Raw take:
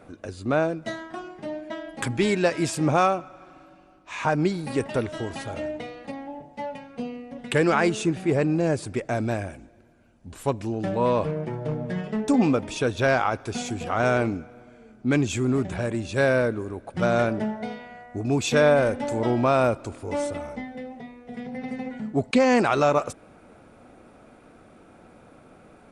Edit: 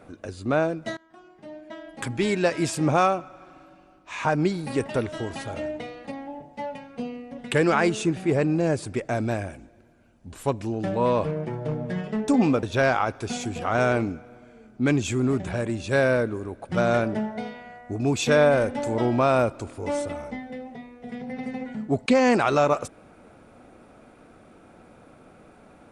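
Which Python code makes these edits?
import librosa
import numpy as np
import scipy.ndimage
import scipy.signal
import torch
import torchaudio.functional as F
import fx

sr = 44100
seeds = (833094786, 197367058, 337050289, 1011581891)

y = fx.edit(x, sr, fx.fade_in_from(start_s=0.97, length_s=1.58, floor_db=-23.0),
    fx.cut(start_s=12.63, length_s=0.25), tone=tone)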